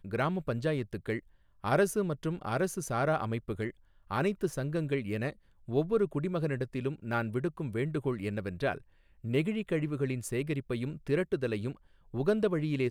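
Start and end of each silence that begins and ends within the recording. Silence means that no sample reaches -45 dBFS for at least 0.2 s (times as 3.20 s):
1.19–1.64 s
3.71–4.10 s
5.33–5.68 s
8.78–9.24 s
11.75–12.14 s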